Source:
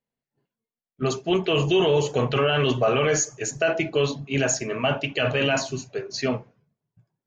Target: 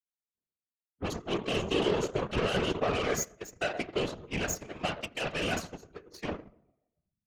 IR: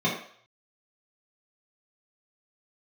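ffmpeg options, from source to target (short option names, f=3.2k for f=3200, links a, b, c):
-filter_complex "[0:a]asplit=2[a][b];[1:a]atrim=start_sample=2205,asetrate=24696,aresample=44100,adelay=82[c];[b][c]afir=irnorm=-1:irlink=0,volume=-25.5dB[d];[a][d]amix=inputs=2:normalize=0,aeval=exprs='0.376*(cos(1*acos(clip(val(0)/0.376,-1,1)))-cos(1*PI/2))+0.0473*(cos(7*acos(clip(val(0)/0.376,-1,1)))-cos(7*PI/2))':c=same,afftfilt=real='hypot(re,im)*cos(2*PI*random(0))':imag='hypot(re,im)*sin(2*PI*random(1))':win_size=512:overlap=0.75,volume=-2.5dB"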